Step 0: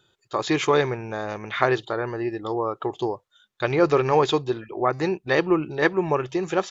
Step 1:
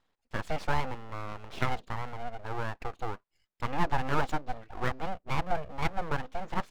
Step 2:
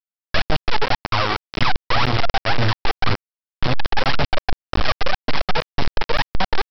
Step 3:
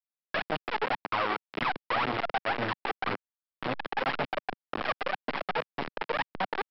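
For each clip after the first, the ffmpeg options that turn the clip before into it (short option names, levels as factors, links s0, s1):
-af "lowpass=f=1300:p=1,equalizer=f=640:w=0.54:g=4,aeval=exprs='abs(val(0))':c=same,volume=0.376"
-af "aphaser=in_gain=1:out_gain=1:delay=2.7:decay=0.8:speed=1.9:type=triangular,acompressor=threshold=0.126:ratio=16,aresample=11025,acrusher=bits=3:mix=0:aa=0.000001,aresample=44100,volume=1.78"
-filter_complex "[0:a]acrossover=split=180 3200:gain=0.0794 1 0.0891[s0][s1][s2];[s0][s1][s2]amix=inputs=3:normalize=0,volume=0.447"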